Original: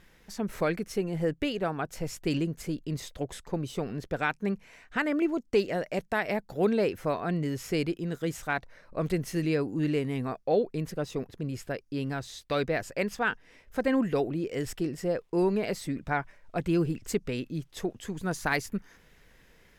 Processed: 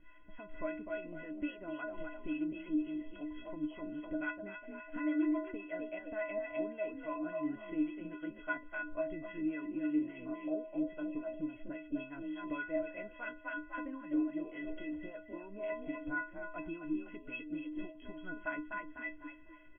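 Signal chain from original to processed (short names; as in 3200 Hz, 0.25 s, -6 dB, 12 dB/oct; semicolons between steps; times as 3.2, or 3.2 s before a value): frequency-shifting echo 0.25 s, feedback 36%, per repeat +43 Hz, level -7 dB; compressor 4:1, threshold -35 dBFS, peak gain reduction 13.5 dB; brick-wall FIR low-pass 3300 Hz; metallic resonator 300 Hz, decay 0.44 s, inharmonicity 0.03; harmonic tremolo 3.6 Hz, depth 70%, crossover 610 Hz; gain +18 dB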